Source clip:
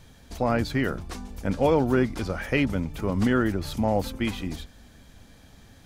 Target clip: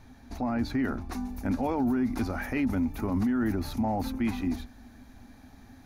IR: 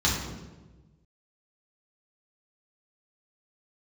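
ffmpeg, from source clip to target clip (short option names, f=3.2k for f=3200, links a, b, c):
-af "equalizer=f=160:t=o:w=0.33:g=-10,equalizer=f=250:t=o:w=0.33:g=11,equalizer=f=500:t=o:w=0.33:g=-8,equalizer=f=800:t=o:w=0.33:g=6,equalizer=f=3.15k:t=o:w=0.33:g=-11,equalizer=f=5k:t=o:w=0.33:g=-4,equalizer=f=8k:t=o:w=0.33:g=-12,alimiter=limit=-19.5dB:level=0:latency=1:release=13,asetnsamples=n=441:p=0,asendcmd='1.12 highshelf g 6;3.67 highshelf g -2',highshelf=f=10k:g=-8,volume=-1dB"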